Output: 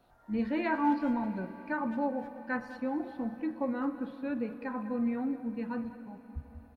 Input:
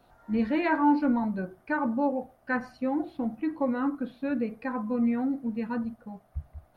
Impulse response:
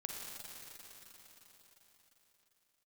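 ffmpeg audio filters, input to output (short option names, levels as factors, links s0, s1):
-filter_complex "[0:a]asplit=2[s0][s1];[s1]adelay=200,highpass=300,lowpass=3400,asoftclip=type=hard:threshold=0.0668,volume=0.224[s2];[s0][s2]amix=inputs=2:normalize=0,asplit=2[s3][s4];[1:a]atrim=start_sample=2205[s5];[s4][s5]afir=irnorm=-1:irlink=0,volume=0.422[s6];[s3][s6]amix=inputs=2:normalize=0,volume=0.447"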